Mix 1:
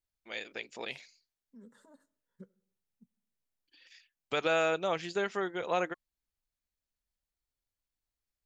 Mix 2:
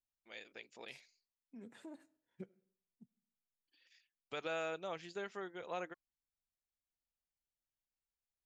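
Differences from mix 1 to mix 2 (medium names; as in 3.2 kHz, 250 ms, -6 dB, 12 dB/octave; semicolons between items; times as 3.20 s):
first voice -11.5 dB; second voice: remove static phaser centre 490 Hz, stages 8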